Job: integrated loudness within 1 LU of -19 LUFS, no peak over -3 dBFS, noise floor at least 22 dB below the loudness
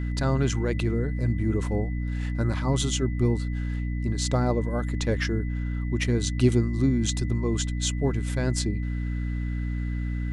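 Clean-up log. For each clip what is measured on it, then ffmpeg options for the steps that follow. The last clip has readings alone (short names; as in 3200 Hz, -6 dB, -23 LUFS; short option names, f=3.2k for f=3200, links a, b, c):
hum 60 Hz; harmonics up to 300 Hz; hum level -26 dBFS; steady tone 2000 Hz; tone level -45 dBFS; loudness -26.5 LUFS; peak -9.5 dBFS; loudness target -19.0 LUFS
-> -af "bandreject=f=60:t=h:w=6,bandreject=f=120:t=h:w=6,bandreject=f=180:t=h:w=6,bandreject=f=240:t=h:w=6,bandreject=f=300:t=h:w=6"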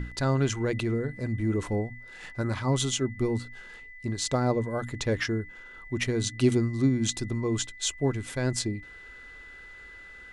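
hum none; steady tone 2000 Hz; tone level -45 dBFS
-> -af "bandreject=f=2k:w=30"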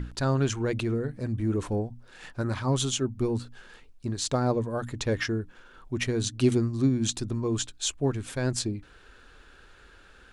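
steady tone none; loudness -28.5 LUFS; peak -11.5 dBFS; loudness target -19.0 LUFS
-> -af "volume=9.5dB,alimiter=limit=-3dB:level=0:latency=1"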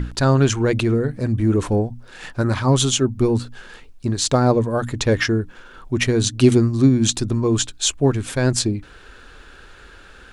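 loudness -19.0 LUFS; peak -3.0 dBFS; noise floor -45 dBFS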